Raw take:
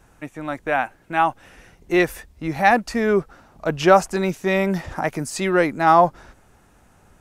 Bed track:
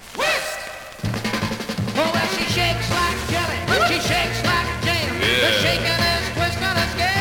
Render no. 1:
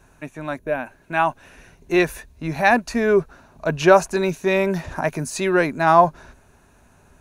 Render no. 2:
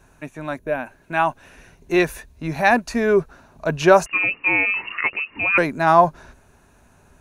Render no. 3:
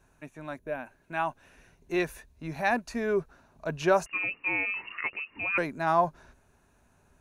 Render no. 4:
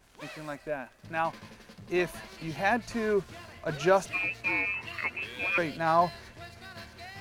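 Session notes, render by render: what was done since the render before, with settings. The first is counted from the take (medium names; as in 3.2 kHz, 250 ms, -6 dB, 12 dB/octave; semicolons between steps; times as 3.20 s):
rippled EQ curve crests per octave 1.5, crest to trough 6 dB; 0.58–0.86 s: time-frequency box 630–10000 Hz -9 dB
4.06–5.58 s: frequency inversion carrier 2.8 kHz
trim -10.5 dB
add bed track -25 dB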